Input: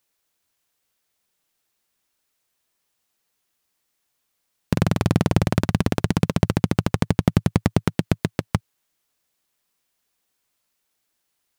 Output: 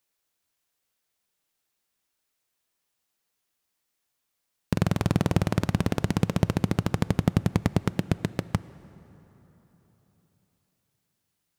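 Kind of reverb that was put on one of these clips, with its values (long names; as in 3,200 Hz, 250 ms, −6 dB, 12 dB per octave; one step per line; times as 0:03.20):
dense smooth reverb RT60 4 s, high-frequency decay 0.6×, DRR 17.5 dB
level −4.5 dB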